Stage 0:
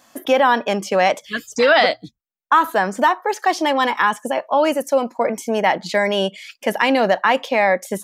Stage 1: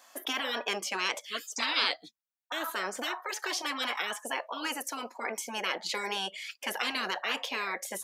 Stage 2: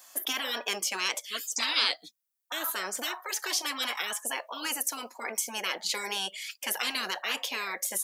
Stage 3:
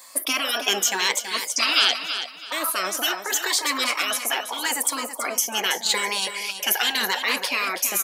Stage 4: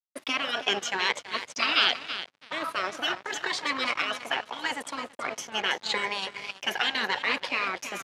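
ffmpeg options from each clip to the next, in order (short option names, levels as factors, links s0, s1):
-af "highpass=590,afftfilt=real='re*lt(hypot(re,im),0.282)':imag='im*lt(hypot(re,im),0.282)':win_size=1024:overlap=0.75,volume=0.668"
-af "crystalizer=i=2.5:c=0,volume=0.75"
-af "afftfilt=real='re*pow(10,10/40*sin(2*PI*(0.98*log(max(b,1)*sr/1024/100)/log(2)-(0.83)*(pts-256)/sr)))':imag='im*pow(10,10/40*sin(2*PI*(0.98*log(max(b,1)*sr/1024/100)/log(2)-(0.83)*(pts-256)/sr)))':win_size=1024:overlap=0.75,aecho=1:1:327|654|981:0.335|0.0971|0.0282,volume=2.24"
-af "aeval=exprs='sgn(val(0))*max(abs(val(0))-0.0237,0)':c=same,highpass=110,lowpass=3200"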